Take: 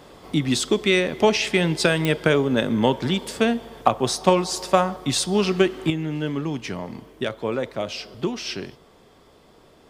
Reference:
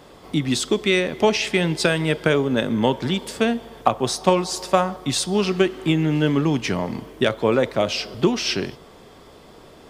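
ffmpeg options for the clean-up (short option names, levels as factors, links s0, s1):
-af "adeclick=t=4,asetnsamples=n=441:p=0,asendcmd='5.9 volume volume 7dB',volume=1"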